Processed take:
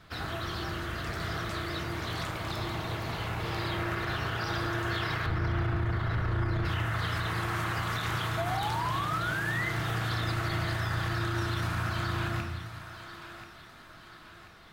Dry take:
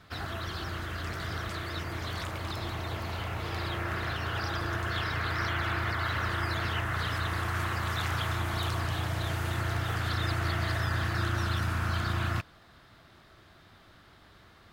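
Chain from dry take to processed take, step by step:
0:05.26–0:06.65: spectral tilt −3.5 dB per octave
feedback echo with a high-pass in the loop 1,035 ms, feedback 48%, high-pass 380 Hz, level −13 dB
0:08.37–0:09.69: sound drawn into the spectrogram rise 650–2,100 Hz −32 dBFS
rectangular room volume 210 cubic metres, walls mixed, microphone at 0.62 metres
brickwall limiter −22 dBFS, peak gain reduction 10 dB

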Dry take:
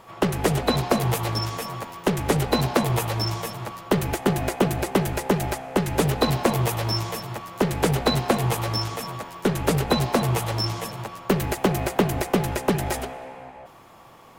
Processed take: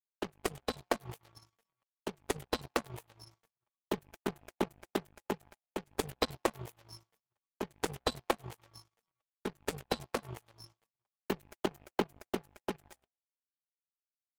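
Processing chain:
spectral dynamics exaggerated over time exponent 1.5
power curve on the samples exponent 3

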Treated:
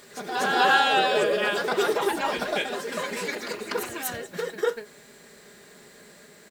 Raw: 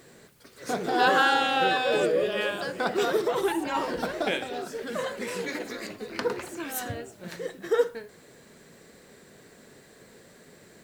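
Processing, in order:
low-shelf EQ 500 Hz −7.5 dB
comb filter 4.9 ms, depth 39%
in parallel at −2 dB: brickwall limiter −20 dBFS, peak gain reduction 10 dB
on the sum: phase-vocoder stretch with locked phases 0.6×
on a send: backwards echo 244 ms −6.5 dB

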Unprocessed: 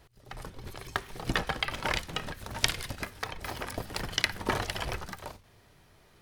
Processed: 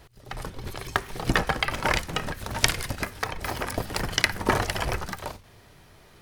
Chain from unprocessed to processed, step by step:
dynamic equaliser 3,500 Hz, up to −5 dB, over −47 dBFS, Q 1.6
level +7 dB

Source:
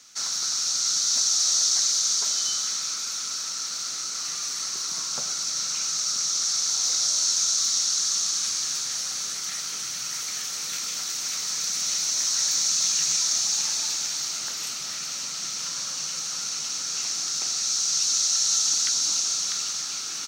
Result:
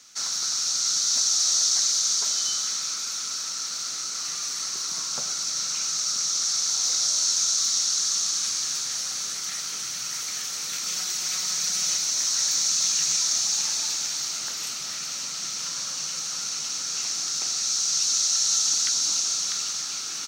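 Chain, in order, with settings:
0:10.85–0:11.97: comb filter 5.5 ms, depth 66%

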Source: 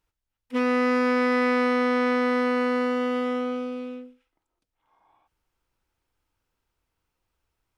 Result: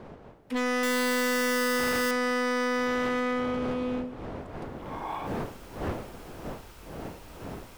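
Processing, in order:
0:00.83–0:02.11: sign of each sample alone
camcorder AGC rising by 20 dB per second
wind on the microphone 570 Hz −38 dBFS
dynamic equaliser 1,800 Hz, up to +7 dB, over −41 dBFS, Q 1.9
hard clipping −26 dBFS, distortion −8 dB

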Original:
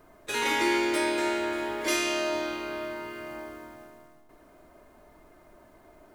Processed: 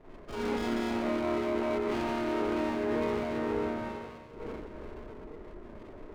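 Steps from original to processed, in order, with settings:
variable-slope delta modulation 32 kbit/s
low-shelf EQ 92 Hz +7 dB
on a send: feedback delay with all-pass diffusion 502 ms, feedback 49%, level −11 dB
on the sum: gate on every frequency bin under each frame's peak −25 dB strong
four-comb reverb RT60 0.84 s, combs from 30 ms, DRR −8.5 dB
reversed playback
downward compressor 6 to 1, threshold −27 dBFS, peak gain reduction 13 dB
reversed playback
formants moved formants −5 semitones
Butterworth low-pass 2,200 Hz
windowed peak hold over 17 samples

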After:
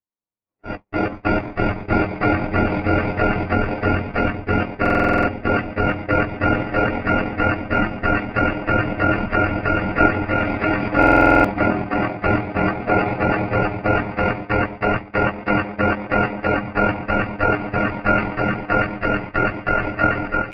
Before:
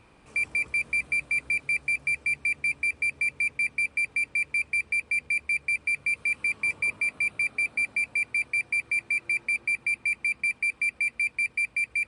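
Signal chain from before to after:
low-pass filter 1,300 Hz 12 dB per octave
low-shelf EQ 370 Hz −2.5 dB
on a send: echo that builds up and dies away 94 ms, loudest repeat 5, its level −14.5 dB
on the sum: phase-vocoder pitch shift with formants kept −9 semitones
in parallel at +2 dB: output level in coarse steps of 11 dB
on the sum: low-shelf EQ 79 Hz −3.5 dB
automatic gain control gain up to 15.5 dB
noise gate −25 dBFS, range −46 dB
time stretch by overlap-add 1.7×, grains 47 ms
buffer that repeats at 0:04.81/0:10.98, samples 2,048, times 9
level +2 dB

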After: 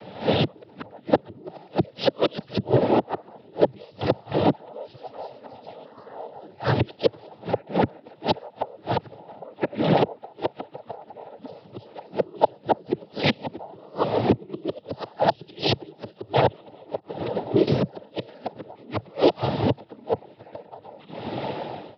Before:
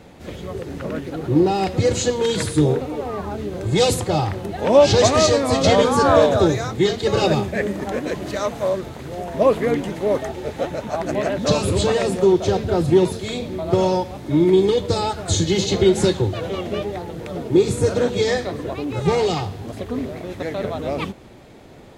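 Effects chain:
fade-out on the ending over 3.37 s
camcorder AGC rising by 35 dB per second
0:12.75–0:13.33: comb filter 3.7 ms, depth 76%
0:16.99–0:17.67: downward expander −7 dBFS
0:18.17–0:18.82: parametric band 260 Hz +4 dB 1.7 octaves
hollow resonant body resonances 630/3,100 Hz, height 14 dB, ringing for 45 ms
gate with flip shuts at −6 dBFS, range −32 dB
cochlear-implant simulation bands 12
downsampling to 11,025 Hz
highs frequency-modulated by the lows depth 0.12 ms

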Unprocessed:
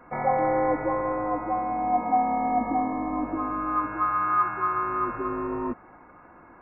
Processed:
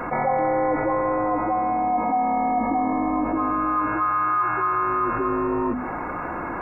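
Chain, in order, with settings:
mains-hum notches 50/100/150/200/250 Hz
envelope flattener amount 70%
level −1.5 dB

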